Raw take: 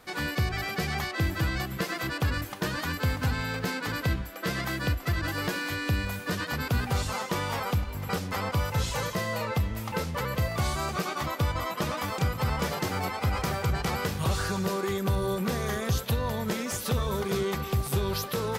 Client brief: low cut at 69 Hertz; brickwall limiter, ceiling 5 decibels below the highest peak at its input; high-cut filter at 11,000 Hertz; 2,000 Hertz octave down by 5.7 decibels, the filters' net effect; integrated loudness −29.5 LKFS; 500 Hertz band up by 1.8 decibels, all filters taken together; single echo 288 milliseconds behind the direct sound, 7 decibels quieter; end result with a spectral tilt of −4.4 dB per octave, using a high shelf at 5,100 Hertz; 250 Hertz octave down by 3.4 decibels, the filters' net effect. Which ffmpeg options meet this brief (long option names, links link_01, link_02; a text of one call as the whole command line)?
ffmpeg -i in.wav -af "highpass=69,lowpass=11000,equalizer=frequency=250:width_type=o:gain=-6.5,equalizer=frequency=500:width_type=o:gain=4.5,equalizer=frequency=2000:width_type=o:gain=-8.5,highshelf=frequency=5100:gain=5,alimiter=limit=-21dB:level=0:latency=1,aecho=1:1:288:0.447,volume=1.5dB" out.wav